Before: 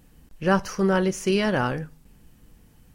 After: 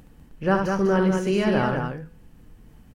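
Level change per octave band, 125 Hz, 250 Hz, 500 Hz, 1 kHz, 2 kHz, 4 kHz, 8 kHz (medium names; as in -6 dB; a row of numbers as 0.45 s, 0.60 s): +2.0 dB, +2.0 dB, +1.5 dB, +1.0 dB, -0.5 dB, -3.5 dB, -6.5 dB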